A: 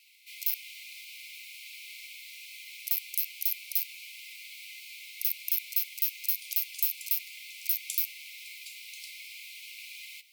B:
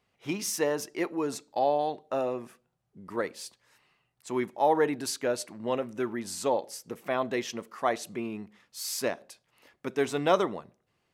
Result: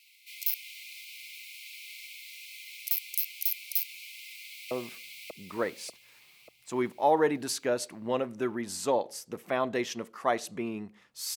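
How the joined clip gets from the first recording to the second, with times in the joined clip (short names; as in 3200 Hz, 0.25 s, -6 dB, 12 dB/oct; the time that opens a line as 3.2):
A
4.09–4.71 echo throw 0.59 s, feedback 50%, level -0.5 dB
4.71 switch to B from 2.29 s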